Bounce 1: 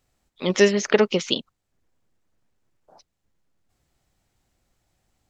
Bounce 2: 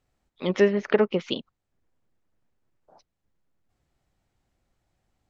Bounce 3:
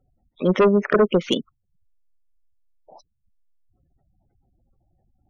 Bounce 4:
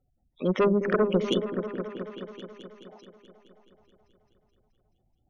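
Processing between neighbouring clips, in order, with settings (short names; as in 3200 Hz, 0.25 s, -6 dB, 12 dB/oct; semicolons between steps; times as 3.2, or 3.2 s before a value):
treble ducked by the level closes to 2100 Hz, closed at -16 dBFS; high shelf 4000 Hz -9 dB; gain -2.5 dB
spectral gate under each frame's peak -15 dB strong; sine folder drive 10 dB, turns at -6 dBFS; gain -4.5 dB
repeats that get brighter 0.214 s, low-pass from 400 Hz, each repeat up 1 oct, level -6 dB; gain -6.5 dB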